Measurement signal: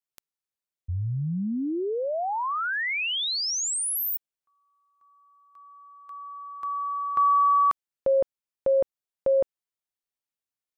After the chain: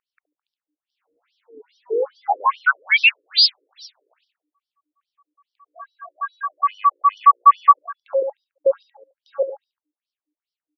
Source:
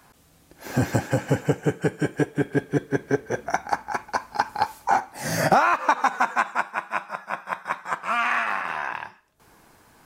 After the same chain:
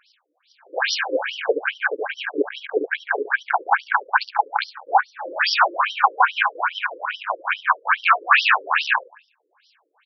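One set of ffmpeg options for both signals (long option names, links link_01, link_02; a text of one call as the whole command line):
ffmpeg -i in.wav -filter_complex "[0:a]acrossover=split=4500[link_01][link_02];[link_02]acompressor=threshold=-35dB:ratio=4:attack=1:release=60[link_03];[link_01][link_03]amix=inputs=2:normalize=0,bandreject=frequency=2000:width=6.7,aeval=exprs='val(0)+0.00447*(sin(2*PI*60*n/s)+sin(2*PI*2*60*n/s)/2+sin(2*PI*3*60*n/s)/3+sin(2*PI*4*60*n/s)/4+sin(2*PI*5*60*n/s)/5)':channel_layout=same,aderivative,acompressor=threshold=-43dB:ratio=16:attack=56:release=20:knee=6:detection=rms,highshelf=frequency=7700:gain=-9,apsyclip=33dB,acrusher=bits=4:mode=log:mix=0:aa=0.000001,asplit=2[link_04][link_05];[link_05]aecho=0:1:71|142|213|284|355:0.447|0.205|0.0945|0.0435|0.02[link_06];[link_04][link_06]amix=inputs=2:normalize=0,afwtdn=0.112,afftfilt=real='re*between(b*sr/1024,380*pow(4200/380,0.5+0.5*sin(2*PI*2.4*pts/sr))/1.41,380*pow(4200/380,0.5+0.5*sin(2*PI*2.4*pts/sr))*1.41)':imag='im*between(b*sr/1024,380*pow(4200/380,0.5+0.5*sin(2*PI*2.4*pts/sr))/1.41,380*pow(4200/380,0.5+0.5*sin(2*PI*2.4*pts/sr))*1.41)':win_size=1024:overlap=0.75,volume=-1.5dB" out.wav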